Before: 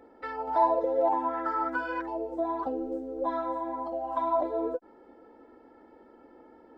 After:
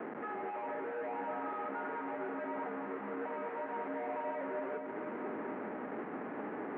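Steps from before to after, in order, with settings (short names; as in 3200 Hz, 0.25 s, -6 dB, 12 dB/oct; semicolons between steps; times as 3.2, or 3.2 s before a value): compressor, threshold -39 dBFS, peak gain reduction 19 dB; limiter -41.5 dBFS, peak gain reduction 12 dB; Schmitt trigger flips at -55 dBFS; echo with dull and thin repeats by turns 0.229 s, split 1100 Hz, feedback 85%, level -7 dB; mistuned SSB -58 Hz 320–2100 Hz; gain +10.5 dB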